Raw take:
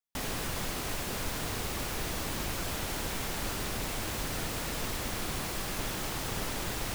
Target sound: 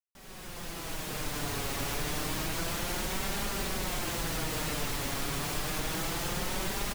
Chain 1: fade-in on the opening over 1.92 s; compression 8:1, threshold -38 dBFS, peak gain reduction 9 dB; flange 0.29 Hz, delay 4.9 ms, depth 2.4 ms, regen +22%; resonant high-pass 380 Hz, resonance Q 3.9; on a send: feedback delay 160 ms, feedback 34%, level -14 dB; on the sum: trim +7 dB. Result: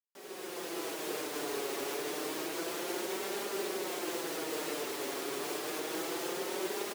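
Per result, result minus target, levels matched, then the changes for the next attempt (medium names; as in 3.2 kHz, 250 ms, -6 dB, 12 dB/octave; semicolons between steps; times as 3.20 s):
500 Hz band +6.5 dB; compression: peak gain reduction +5 dB
remove: resonant high-pass 380 Hz, resonance Q 3.9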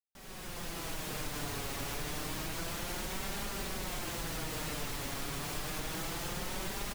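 compression: peak gain reduction +5 dB
change: compression 8:1, threshold -32 dBFS, peak gain reduction 4 dB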